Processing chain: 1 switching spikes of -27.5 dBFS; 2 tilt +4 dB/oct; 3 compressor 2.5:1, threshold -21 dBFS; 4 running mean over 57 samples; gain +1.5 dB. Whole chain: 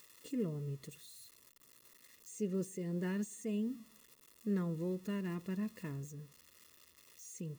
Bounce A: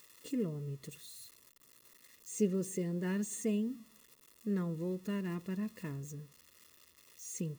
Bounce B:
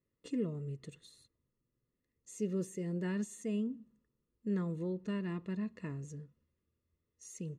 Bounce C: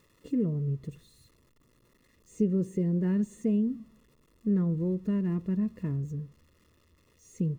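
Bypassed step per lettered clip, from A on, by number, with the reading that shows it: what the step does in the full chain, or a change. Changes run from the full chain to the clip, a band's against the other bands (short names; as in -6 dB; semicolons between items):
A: 3, crest factor change +4.5 dB; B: 1, distortion -11 dB; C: 2, momentary loudness spread change -9 LU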